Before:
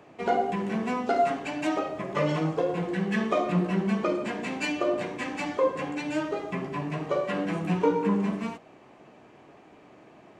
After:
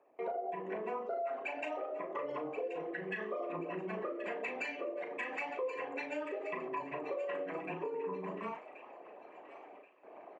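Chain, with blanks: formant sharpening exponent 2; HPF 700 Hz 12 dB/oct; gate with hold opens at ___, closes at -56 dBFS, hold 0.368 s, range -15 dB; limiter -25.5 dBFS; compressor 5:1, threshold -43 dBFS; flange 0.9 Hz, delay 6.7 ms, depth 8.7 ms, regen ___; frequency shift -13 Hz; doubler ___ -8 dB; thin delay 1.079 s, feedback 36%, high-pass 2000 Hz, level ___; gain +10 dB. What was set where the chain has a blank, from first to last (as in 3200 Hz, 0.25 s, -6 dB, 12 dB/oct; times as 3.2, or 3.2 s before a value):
-49 dBFS, -78%, 37 ms, -9 dB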